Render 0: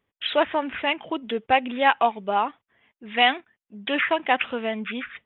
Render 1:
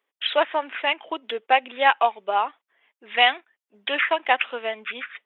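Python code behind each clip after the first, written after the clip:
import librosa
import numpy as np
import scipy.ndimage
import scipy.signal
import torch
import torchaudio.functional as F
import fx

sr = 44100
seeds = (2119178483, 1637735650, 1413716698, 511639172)

y = scipy.signal.sosfilt(scipy.signal.bessel(4, 510.0, 'highpass', norm='mag', fs=sr, output='sos'), x)
y = fx.transient(y, sr, attack_db=2, sustain_db=-2)
y = F.gain(torch.from_numpy(y), 1.0).numpy()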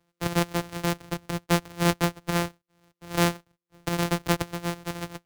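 y = np.r_[np.sort(x[:len(x) // 256 * 256].reshape(-1, 256), axis=1).ravel(), x[len(x) // 256 * 256:]]
y = fx.band_squash(y, sr, depth_pct=40)
y = F.gain(torch.from_numpy(y), -4.0).numpy()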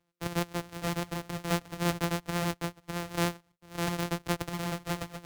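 y = fx.vibrato(x, sr, rate_hz=7.7, depth_cents=17.0)
y = y + 10.0 ** (-3.5 / 20.0) * np.pad(y, (int(605 * sr / 1000.0), 0))[:len(y)]
y = F.gain(torch.from_numpy(y), -6.5).numpy()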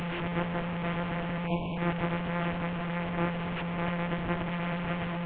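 y = fx.delta_mod(x, sr, bps=16000, step_db=-27.0)
y = fx.spec_erase(y, sr, start_s=1.47, length_s=0.3, low_hz=1100.0, high_hz=2200.0)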